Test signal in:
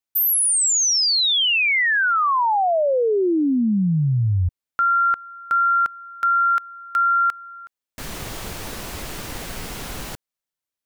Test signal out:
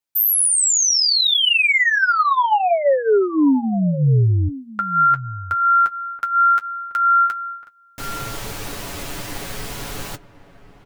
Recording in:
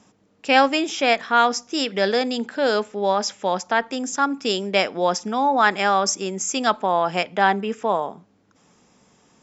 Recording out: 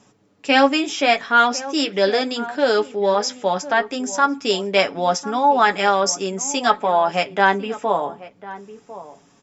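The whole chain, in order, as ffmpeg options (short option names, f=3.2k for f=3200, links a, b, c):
-filter_complex "[0:a]aecho=1:1:7.1:0.41,asplit=2[a][b];[b]adelay=1050,volume=-15dB,highshelf=f=4k:g=-23.6[c];[a][c]amix=inputs=2:normalize=0,flanger=delay=9.1:depth=1.4:regen=-39:speed=0.72:shape=sinusoidal,volume=5dB"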